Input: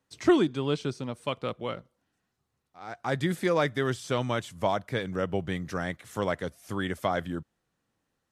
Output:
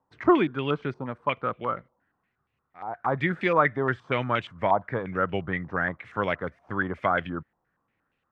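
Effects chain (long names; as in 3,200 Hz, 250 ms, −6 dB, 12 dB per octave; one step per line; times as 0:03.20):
low-pass on a step sequencer 8.5 Hz 930–2,600 Hz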